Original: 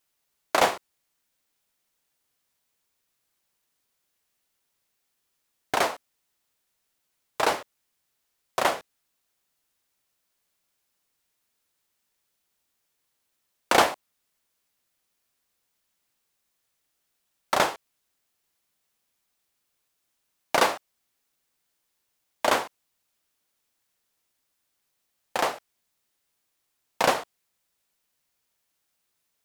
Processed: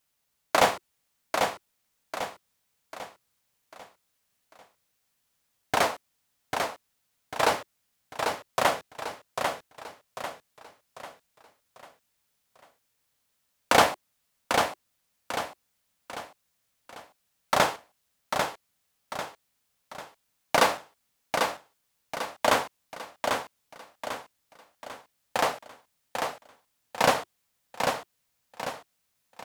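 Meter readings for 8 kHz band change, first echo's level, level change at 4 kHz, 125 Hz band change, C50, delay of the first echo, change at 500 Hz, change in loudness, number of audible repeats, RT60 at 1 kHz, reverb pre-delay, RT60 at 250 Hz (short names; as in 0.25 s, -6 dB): +1.5 dB, -5.0 dB, +1.5 dB, +5.5 dB, none, 0.795 s, +1.5 dB, -3.0 dB, 5, none, none, none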